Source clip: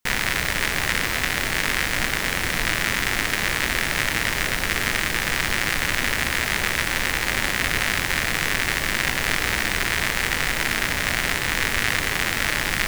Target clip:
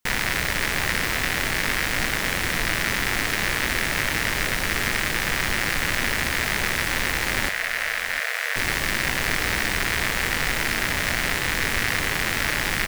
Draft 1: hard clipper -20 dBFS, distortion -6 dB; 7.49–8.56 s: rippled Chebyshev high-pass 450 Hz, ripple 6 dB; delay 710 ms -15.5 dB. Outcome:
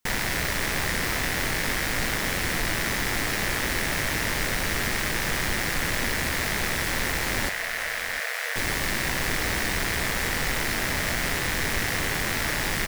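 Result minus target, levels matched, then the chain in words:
hard clipper: distortion +8 dB
hard clipper -12 dBFS, distortion -14 dB; 7.49–8.56 s: rippled Chebyshev high-pass 450 Hz, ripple 6 dB; delay 710 ms -15.5 dB

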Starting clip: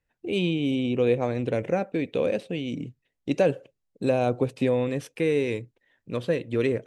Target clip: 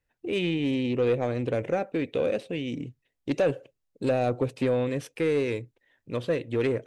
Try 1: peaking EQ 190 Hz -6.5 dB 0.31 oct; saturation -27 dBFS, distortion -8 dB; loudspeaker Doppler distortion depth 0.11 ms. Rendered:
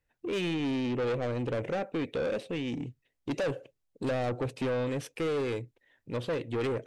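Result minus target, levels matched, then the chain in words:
saturation: distortion +11 dB
peaking EQ 190 Hz -6.5 dB 0.31 oct; saturation -16 dBFS, distortion -19 dB; loudspeaker Doppler distortion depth 0.11 ms

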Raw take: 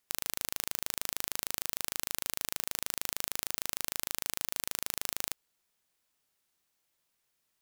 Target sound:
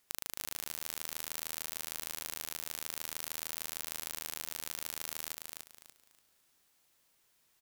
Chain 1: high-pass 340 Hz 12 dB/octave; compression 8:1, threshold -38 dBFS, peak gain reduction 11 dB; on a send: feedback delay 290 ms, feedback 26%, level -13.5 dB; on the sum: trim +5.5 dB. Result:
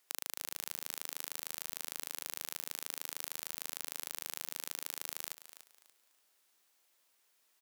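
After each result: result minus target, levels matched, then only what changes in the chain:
echo-to-direct -9.5 dB; 250 Hz band -5.5 dB
change: feedback delay 290 ms, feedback 26%, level -4 dB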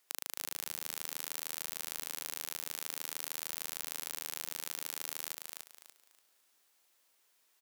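250 Hz band -5.5 dB
remove: high-pass 340 Hz 12 dB/octave

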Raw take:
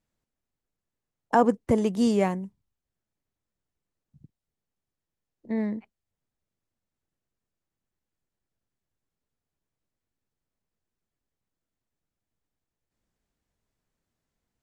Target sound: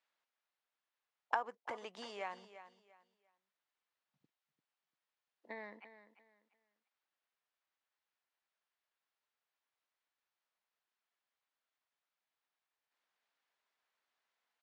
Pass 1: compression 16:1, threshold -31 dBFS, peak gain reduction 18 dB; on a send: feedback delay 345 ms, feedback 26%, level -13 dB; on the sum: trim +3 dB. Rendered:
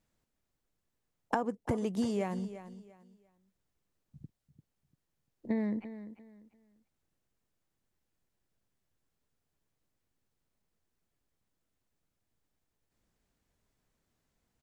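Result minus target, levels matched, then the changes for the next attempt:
2 kHz band -9.0 dB
add after compression: Butterworth band-pass 1.9 kHz, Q 0.55

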